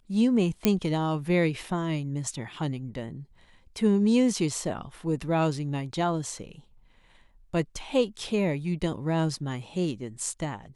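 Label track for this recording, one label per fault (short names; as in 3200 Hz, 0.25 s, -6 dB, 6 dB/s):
0.650000	0.650000	pop -7 dBFS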